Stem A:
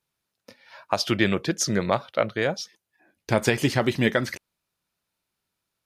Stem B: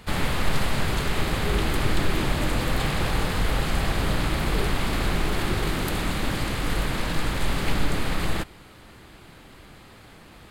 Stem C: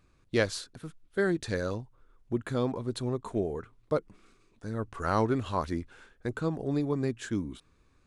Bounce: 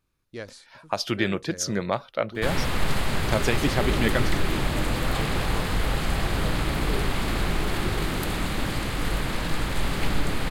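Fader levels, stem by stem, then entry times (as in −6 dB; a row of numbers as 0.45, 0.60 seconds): −3.0, −1.0, −11.0 decibels; 0.00, 2.35, 0.00 seconds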